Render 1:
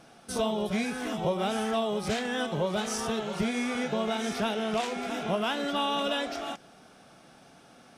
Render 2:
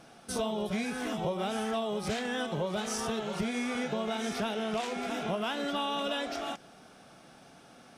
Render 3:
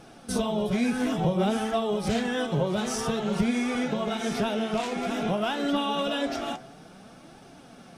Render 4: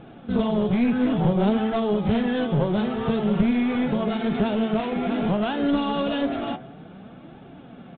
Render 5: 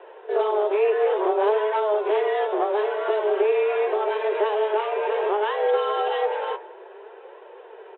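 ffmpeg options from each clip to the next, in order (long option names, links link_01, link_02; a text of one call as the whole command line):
ffmpeg -i in.wav -af "acompressor=threshold=-31dB:ratio=2" out.wav
ffmpeg -i in.wav -af "lowshelf=frequency=380:gain=8,bandreject=frequency=73.65:width_type=h:width=4,bandreject=frequency=147.3:width_type=h:width=4,bandreject=frequency=220.95:width_type=h:width=4,bandreject=frequency=294.6:width_type=h:width=4,bandreject=frequency=368.25:width_type=h:width=4,bandreject=frequency=441.9:width_type=h:width=4,bandreject=frequency=515.55:width_type=h:width=4,bandreject=frequency=589.2:width_type=h:width=4,bandreject=frequency=662.85:width_type=h:width=4,bandreject=frequency=736.5:width_type=h:width=4,bandreject=frequency=810.15:width_type=h:width=4,bandreject=frequency=883.8:width_type=h:width=4,bandreject=frequency=957.45:width_type=h:width=4,bandreject=frequency=1031.1:width_type=h:width=4,bandreject=frequency=1104.75:width_type=h:width=4,bandreject=frequency=1178.4:width_type=h:width=4,bandreject=frequency=1252.05:width_type=h:width=4,bandreject=frequency=1325.7:width_type=h:width=4,bandreject=frequency=1399.35:width_type=h:width=4,bandreject=frequency=1473:width_type=h:width=4,bandreject=frequency=1546.65:width_type=h:width=4,bandreject=frequency=1620.3:width_type=h:width=4,bandreject=frequency=1693.95:width_type=h:width=4,bandreject=frequency=1767.6:width_type=h:width=4,bandreject=frequency=1841.25:width_type=h:width=4,bandreject=frequency=1914.9:width_type=h:width=4,bandreject=frequency=1988.55:width_type=h:width=4,bandreject=frequency=2062.2:width_type=h:width=4,bandreject=frequency=2135.85:width_type=h:width=4,bandreject=frequency=2209.5:width_type=h:width=4,bandreject=frequency=2283.15:width_type=h:width=4,bandreject=frequency=2356.8:width_type=h:width=4,bandreject=frequency=2430.45:width_type=h:width=4,flanger=delay=2.2:depth=6.5:regen=51:speed=0.54:shape=triangular,volume=7dB" out.wav
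ffmpeg -i in.wav -af "aresample=8000,aeval=exprs='clip(val(0),-1,0.0398)':channel_layout=same,aresample=44100,equalizer=frequency=150:width=0.31:gain=8" out.wav
ffmpeg -i in.wav -af "highpass=frequency=180:width_type=q:width=0.5412,highpass=frequency=180:width_type=q:width=1.307,lowpass=frequency=2900:width_type=q:width=0.5176,lowpass=frequency=2900:width_type=q:width=0.7071,lowpass=frequency=2900:width_type=q:width=1.932,afreqshift=210,volume=1dB" out.wav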